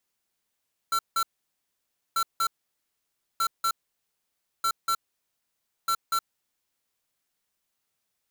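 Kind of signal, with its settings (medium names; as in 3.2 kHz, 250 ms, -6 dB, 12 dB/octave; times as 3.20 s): beep pattern square 1.35 kHz, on 0.07 s, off 0.17 s, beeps 2, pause 0.93 s, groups 5, -24.5 dBFS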